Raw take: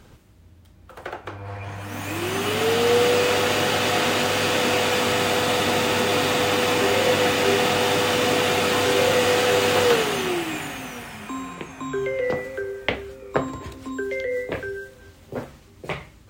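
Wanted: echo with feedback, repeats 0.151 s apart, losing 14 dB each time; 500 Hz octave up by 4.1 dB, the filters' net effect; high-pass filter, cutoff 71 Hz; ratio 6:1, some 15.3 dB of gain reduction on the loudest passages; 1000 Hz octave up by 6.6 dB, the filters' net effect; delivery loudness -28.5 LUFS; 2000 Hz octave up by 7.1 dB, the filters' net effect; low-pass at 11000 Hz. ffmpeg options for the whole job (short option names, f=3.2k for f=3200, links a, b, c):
-af "highpass=71,lowpass=11k,equalizer=f=500:t=o:g=3,equalizer=f=1k:t=o:g=6,equalizer=f=2k:t=o:g=7,acompressor=threshold=-27dB:ratio=6,aecho=1:1:151|302:0.2|0.0399,volume=0.5dB"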